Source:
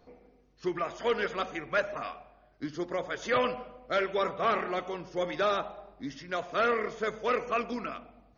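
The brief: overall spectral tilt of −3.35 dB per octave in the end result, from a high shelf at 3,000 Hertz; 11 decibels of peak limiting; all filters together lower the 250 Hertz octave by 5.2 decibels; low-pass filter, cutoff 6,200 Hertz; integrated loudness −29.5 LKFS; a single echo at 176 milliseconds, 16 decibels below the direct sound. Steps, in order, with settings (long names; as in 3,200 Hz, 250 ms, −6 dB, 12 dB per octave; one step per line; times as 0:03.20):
low-pass filter 6,200 Hz
parametric band 250 Hz −8 dB
high-shelf EQ 3,000 Hz +8 dB
brickwall limiter −26.5 dBFS
single-tap delay 176 ms −16 dB
level +8 dB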